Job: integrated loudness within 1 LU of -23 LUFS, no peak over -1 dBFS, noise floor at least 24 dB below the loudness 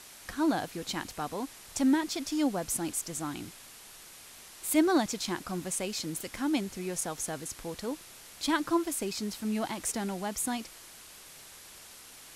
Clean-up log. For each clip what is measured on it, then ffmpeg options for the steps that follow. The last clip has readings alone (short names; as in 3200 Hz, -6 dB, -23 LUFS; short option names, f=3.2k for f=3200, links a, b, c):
noise floor -51 dBFS; noise floor target -56 dBFS; loudness -32.0 LUFS; peak -13.5 dBFS; loudness target -23.0 LUFS
-> -af "afftdn=nr=6:nf=-51"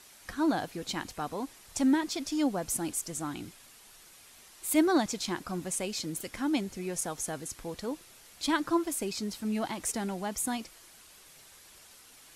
noise floor -55 dBFS; noise floor target -56 dBFS
-> -af "afftdn=nr=6:nf=-55"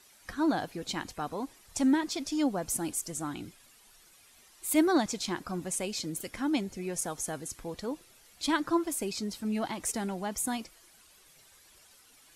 noise floor -60 dBFS; loudness -32.0 LUFS; peak -13.5 dBFS; loudness target -23.0 LUFS
-> -af "volume=9dB"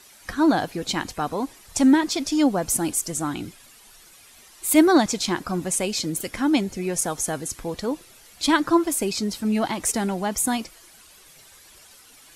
loudness -23.0 LUFS; peak -4.5 dBFS; noise floor -51 dBFS